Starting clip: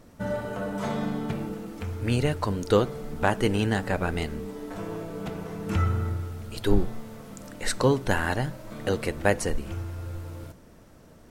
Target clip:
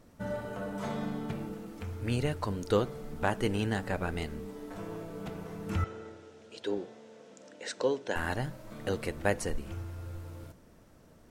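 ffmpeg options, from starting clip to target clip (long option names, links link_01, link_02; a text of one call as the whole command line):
ffmpeg -i in.wav -filter_complex "[0:a]asettb=1/sr,asplit=3[link_01][link_02][link_03];[link_01]atrim=end=5.844[link_04];[link_02]atrim=start=5.84:end=8.16,asetpts=PTS-STARTPTS,afade=type=in:duration=0.004:curve=qsin,afade=type=out:start_time=2.316:duration=0.004:curve=qsin,highpass=350,equalizer=frequency=490:width_type=q:width=4:gain=4,equalizer=frequency=810:width_type=q:width=4:gain=-4,equalizer=frequency=1200:width_type=q:width=4:gain=-10,equalizer=frequency=2100:width_type=q:width=4:gain=-4,equalizer=frequency=4500:width_type=q:width=4:gain=-4,lowpass=frequency=6900:width=0.5412,lowpass=frequency=6900:width=1.3066[link_05];[link_03]atrim=start=8.156[link_06];[link_04][link_05]acrossfade=duration=0.004:curve1=hsin:curve2=qsin[link_07];[link_07][link_06]acrossfade=duration=0.004:curve1=qsin:curve2=hsin,volume=-6dB" out.wav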